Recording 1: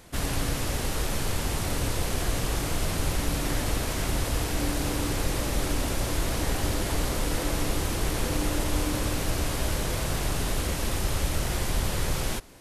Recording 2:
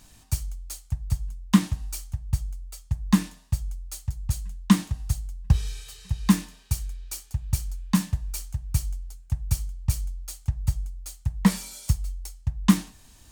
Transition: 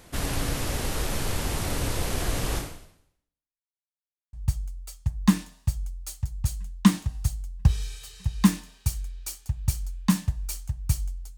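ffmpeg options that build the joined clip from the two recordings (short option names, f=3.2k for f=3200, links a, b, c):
-filter_complex "[0:a]apad=whole_dur=11.37,atrim=end=11.37,asplit=2[a][b];[a]atrim=end=3.73,asetpts=PTS-STARTPTS,afade=t=out:st=2.57:d=1.16:c=exp[c];[b]atrim=start=3.73:end=4.33,asetpts=PTS-STARTPTS,volume=0[d];[1:a]atrim=start=2.18:end=9.22,asetpts=PTS-STARTPTS,afade=t=in:d=0.004:c=hsin[e];[c][d][e]concat=n=3:v=0:a=1"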